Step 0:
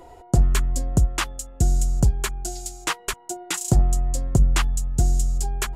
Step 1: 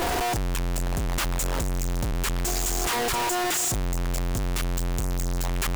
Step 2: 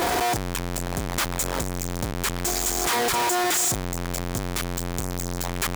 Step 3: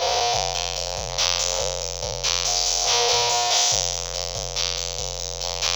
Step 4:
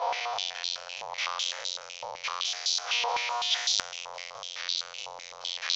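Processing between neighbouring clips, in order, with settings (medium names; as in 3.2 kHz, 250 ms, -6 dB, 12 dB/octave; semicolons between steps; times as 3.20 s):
one-bit comparator; trim -5 dB
high-pass 130 Hz 6 dB/octave; band-stop 2.8 kHz, Q 16; trim +3 dB
spectral sustain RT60 1.79 s; FFT filter 120 Hz 0 dB, 320 Hz -25 dB, 500 Hz +11 dB, 1.7 kHz -5 dB, 2.8 kHz +9 dB, 6.1 kHz +15 dB, 9.1 kHz -29 dB, 16 kHz -11 dB; trim -6.5 dB
step-sequenced band-pass 7.9 Hz 950–4000 Hz; trim +2.5 dB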